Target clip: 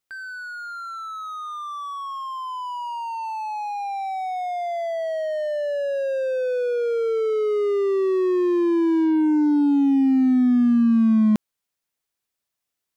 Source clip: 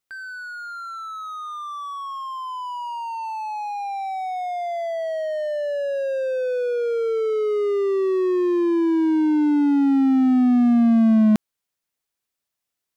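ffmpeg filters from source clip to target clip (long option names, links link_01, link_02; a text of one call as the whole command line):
ffmpeg -i in.wav -af "asoftclip=type=hard:threshold=-14dB" out.wav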